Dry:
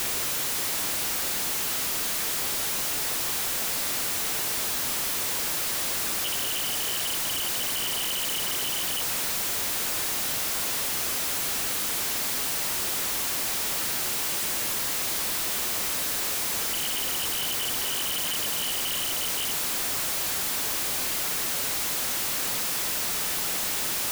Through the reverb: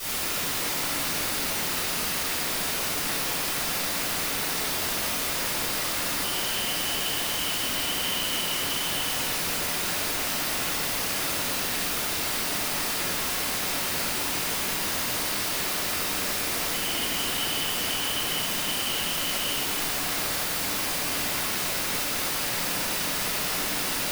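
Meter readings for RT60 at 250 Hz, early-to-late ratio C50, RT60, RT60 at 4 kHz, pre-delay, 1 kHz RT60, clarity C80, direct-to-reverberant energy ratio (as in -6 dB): 4.0 s, -5.0 dB, 2.6 s, 1.6 s, 3 ms, 2.3 s, -2.0 dB, -14.5 dB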